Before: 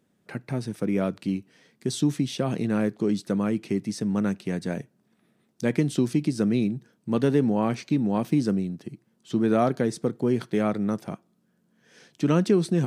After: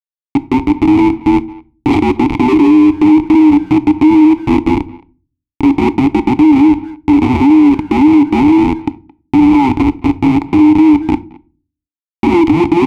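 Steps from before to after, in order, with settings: every band turned upside down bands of 500 Hz; 2.48–3.27 s: peaking EQ 400 Hz +12.5 dB 0.57 oct; Schmitt trigger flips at -26.5 dBFS; vowel filter u; resonant low shelf 120 Hz +6.5 dB, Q 1.5; speakerphone echo 220 ms, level -23 dB; reverberation RT60 0.40 s, pre-delay 7 ms, DRR 15 dB; loudness maximiser +31.5 dB; trim -1 dB

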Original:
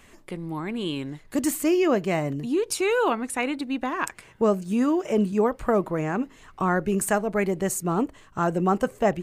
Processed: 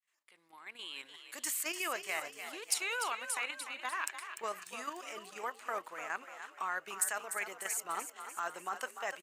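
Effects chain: fade-in on the opening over 1.07 s; high-pass 1.4 kHz 12 dB/octave; level held to a coarse grid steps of 9 dB; overload inside the chain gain 20 dB; frequency-shifting echo 296 ms, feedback 54%, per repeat +45 Hz, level -9.5 dB

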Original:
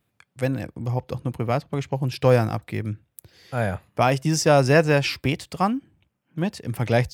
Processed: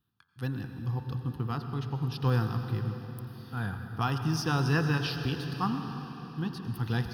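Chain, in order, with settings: static phaser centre 2.2 kHz, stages 6; de-hum 88.91 Hz, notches 24; on a send: reverberation RT60 4.5 s, pre-delay 82 ms, DRR 6.5 dB; on the sum: trim -5.5 dB

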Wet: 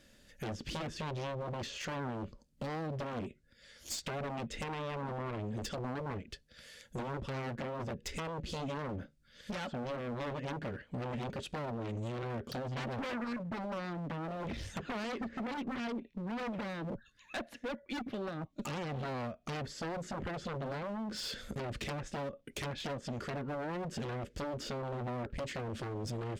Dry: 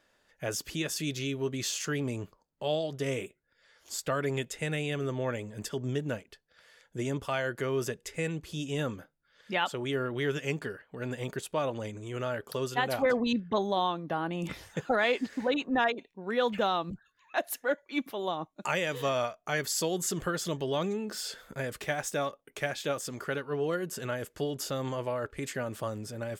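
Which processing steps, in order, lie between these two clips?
low-pass that closes with the level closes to 1.5 kHz, closed at -29.5 dBFS; amplifier tone stack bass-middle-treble 10-0-1; band-stop 400 Hz, Q 12; in parallel at -5.5 dB: sine folder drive 16 dB, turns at -39.5 dBFS; on the sum: bass shelf 130 Hz -7.5 dB; small resonant body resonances 230/560 Hz, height 8 dB, ringing for 95 ms; compression 10:1, threshold -47 dBFS, peak gain reduction 10.5 dB; one-sided clip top -51.5 dBFS; trim +13.5 dB

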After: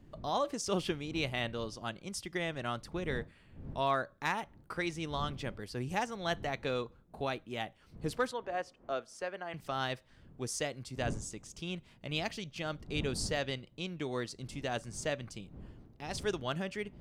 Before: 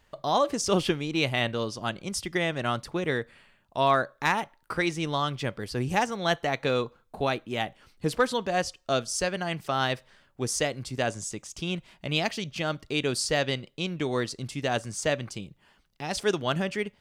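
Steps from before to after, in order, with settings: wind noise 170 Hz -41 dBFS; 8.31–9.54 s: three-band isolator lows -16 dB, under 310 Hz, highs -14 dB, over 2.4 kHz; trim -8.5 dB

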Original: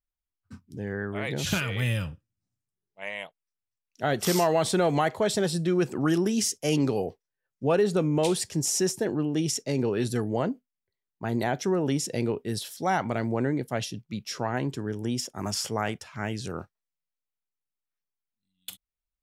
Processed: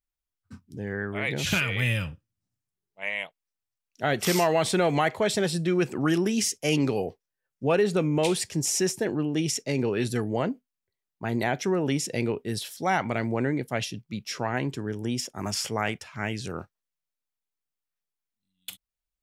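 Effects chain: dynamic bell 2.3 kHz, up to +7 dB, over -49 dBFS, Q 1.8

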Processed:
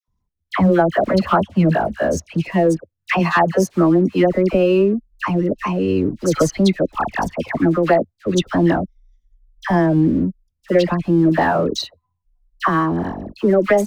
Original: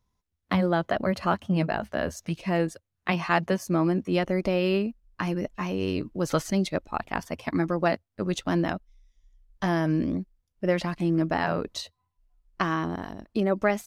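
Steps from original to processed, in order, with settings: resonances exaggerated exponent 1.5; waveshaping leveller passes 1; phase dispersion lows, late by 80 ms, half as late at 1.3 kHz; trim +6.5 dB

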